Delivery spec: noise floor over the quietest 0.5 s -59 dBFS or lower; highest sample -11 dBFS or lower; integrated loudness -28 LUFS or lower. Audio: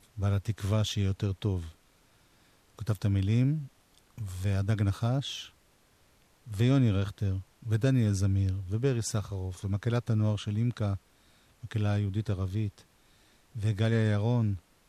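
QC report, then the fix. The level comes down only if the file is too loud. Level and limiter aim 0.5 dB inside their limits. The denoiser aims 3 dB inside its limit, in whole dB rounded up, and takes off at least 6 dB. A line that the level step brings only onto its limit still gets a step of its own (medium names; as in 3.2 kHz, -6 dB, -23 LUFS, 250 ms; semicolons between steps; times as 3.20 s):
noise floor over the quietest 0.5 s -64 dBFS: pass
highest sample -14.0 dBFS: pass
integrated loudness -30.0 LUFS: pass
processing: none needed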